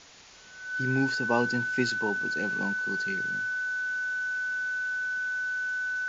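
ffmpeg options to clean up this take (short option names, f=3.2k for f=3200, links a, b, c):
-af "bandreject=f=1.5k:w=30,afwtdn=0.004"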